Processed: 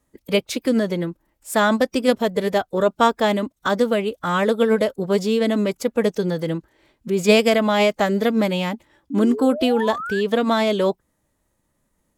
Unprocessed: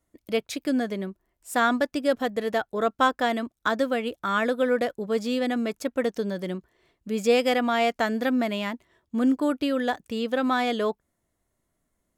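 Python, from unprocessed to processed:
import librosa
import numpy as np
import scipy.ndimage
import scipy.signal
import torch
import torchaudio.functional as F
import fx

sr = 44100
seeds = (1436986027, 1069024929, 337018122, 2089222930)

y = fx.pitch_keep_formants(x, sr, semitones=-2.0)
y = fx.dynamic_eq(y, sr, hz=1600.0, q=1.3, threshold_db=-40.0, ratio=4.0, max_db=-6)
y = fx.spec_paint(y, sr, seeds[0], shape='rise', start_s=9.1, length_s=1.11, low_hz=270.0, high_hz=1800.0, level_db=-36.0)
y = F.gain(torch.from_numpy(y), 7.0).numpy()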